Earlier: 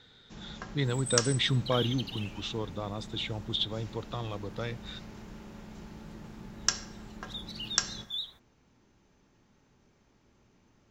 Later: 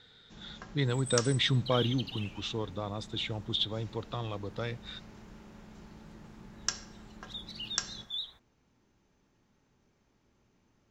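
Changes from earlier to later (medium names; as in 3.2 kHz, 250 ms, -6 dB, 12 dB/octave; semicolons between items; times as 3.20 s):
first sound -5.0 dB; second sound: add treble shelf 8.6 kHz -9.5 dB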